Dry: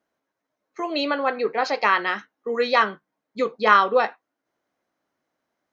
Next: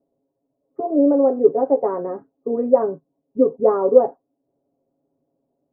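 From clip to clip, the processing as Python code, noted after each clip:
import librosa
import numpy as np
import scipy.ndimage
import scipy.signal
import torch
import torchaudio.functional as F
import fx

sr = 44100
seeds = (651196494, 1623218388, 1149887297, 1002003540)

y = scipy.signal.sosfilt(scipy.signal.cheby2(4, 80, 3500.0, 'lowpass', fs=sr, output='sos'), x)
y = y + 0.83 * np.pad(y, (int(7.3 * sr / 1000.0), 0))[:len(y)]
y = y * librosa.db_to_amplitude(8.0)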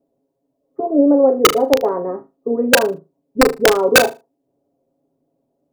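y = (np.mod(10.0 ** (5.5 / 20.0) * x + 1.0, 2.0) - 1.0) / 10.0 ** (5.5 / 20.0)
y = fx.room_flutter(y, sr, wall_m=6.5, rt60_s=0.24)
y = y * librosa.db_to_amplitude(3.0)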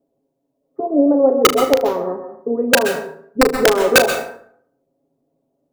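y = fx.rev_plate(x, sr, seeds[0], rt60_s=0.62, hf_ratio=0.6, predelay_ms=115, drr_db=8.0)
y = y * librosa.db_to_amplitude(-1.0)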